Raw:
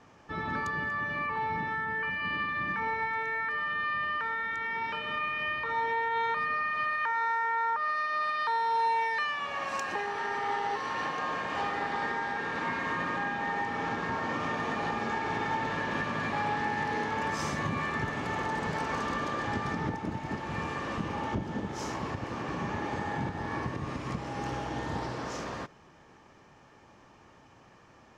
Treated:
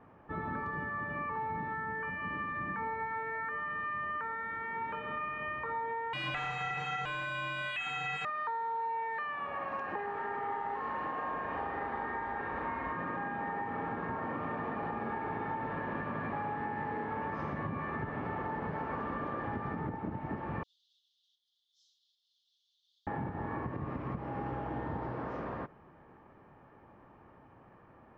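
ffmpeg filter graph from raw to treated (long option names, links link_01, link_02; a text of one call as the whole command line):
ffmpeg -i in.wav -filter_complex "[0:a]asettb=1/sr,asplit=3[link_01][link_02][link_03];[link_01]atrim=end=6.134[link_04];[link_02]atrim=start=6.13:end=8.25,asetpts=PTS-STARTPTS,afade=type=in:duration=0.004:curve=qsin,afade=type=out:start_time=2.116:duration=0.004:curve=qsin,lowpass=frequency=3200:width_type=q:width=0.5098,lowpass=frequency=3200:width_type=q:width=0.6013,lowpass=frequency=3200:width_type=q:width=0.9,lowpass=frequency=3200:width_type=q:width=2.563,afreqshift=-3800,aeval=exprs='0.106*sin(PI/2*4.47*val(0)/0.106)':channel_layout=same[link_05];[link_03]atrim=start=8.246[link_06];[link_04][link_05]acrossfade=duration=0.004:curve1=hsin:curve2=qsin[link_07];[link_07][link_06]acrossfade=duration=0.004:curve1=qsin:curve2=hsin,asettb=1/sr,asplit=3[link_08][link_09][link_10];[link_08]atrim=end=10.484[link_11];[link_09]atrim=start=10.48:end=12.93,asetpts=PTS-STARTPTS,afade=type=in:duration=0.004:curve=qsin,afade=type=out:start_time=2.446:duration=0.004:curve=qsin,asubboost=boost=9.5:cutoff=58,asplit=2[link_12][link_13];[link_13]adelay=38,volume=-4dB[link_14];[link_12][link_14]amix=inputs=2:normalize=0,atrim=end_sample=108045[link_15];[link_10]atrim=start=12.926[link_16];[link_11][link_15]acrossfade=duration=0.004:curve1=hsin:curve2=qsin[link_17];[link_17][link_16]acrossfade=duration=0.004:curve1=qsin:curve2=hsin,asettb=1/sr,asplit=3[link_18][link_19][link_20];[link_18]atrim=end=20.634[link_21];[link_19]atrim=start=20.63:end=23.07,asetpts=PTS-STARTPTS,afade=type=in:duration=0.004:curve=qsin,afade=type=out:start_time=2.436:duration=0.004:curve=qsin,asuperpass=centerf=5800:order=20:qfactor=0.99,aecho=1:1:5.7:0.86,atrim=end_sample=107604[link_22];[link_20]atrim=start=23.066[link_23];[link_21][link_22]acrossfade=duration=0.004:curve1=hsin:curve2=qsin[link_24];[link_24][link_23]acrossfade=duration=0.004:curve1=qsin:curve2=hsin,lowpass=1800,aemphasis=mode=reproduction:type=75kf,acompressor=threshold=-33dB:ratio=6" out.wav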